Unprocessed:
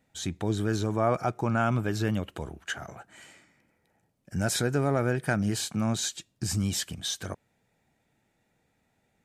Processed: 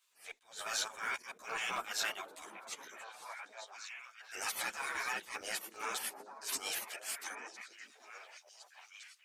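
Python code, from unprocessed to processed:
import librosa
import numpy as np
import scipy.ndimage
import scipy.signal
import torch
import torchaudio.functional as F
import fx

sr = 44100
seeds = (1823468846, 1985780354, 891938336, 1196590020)

p1 = fx.spec_gate(x, sr, threshold_db=-20, keep='weak')
p2 = fx.quant_float(p1, sr, bits=2)
p3 = p1 + (p2 * 10.0 ** (-10.0 / 20.0))
p4 = fx.low_shelf(p3, sr, hz=490.0, db=-9.5)
p5 = fx.transient(p4, sr, attack_db=-6, sustain_db=-10)
p6 = fx.low_shelf(p5, sr, hz=100.0, db=-9.5)
p7 = p6 + fx.echo_stepped(p6, sr, ms=763, hz=280.0, octaves=1.4, feedback_pct=70, wet_db=-3.5, dry=0)
p8 = fx.chorus_voices(p7, sr, voices=4, hz=1.0, base_ms=12, depth_ms=3.0, mix_pct=55)
p9 = fx.attack_slew(p8, sr, db_per_s=170.0)
y = p9 * 10.0 ** (9.0 / 20.0)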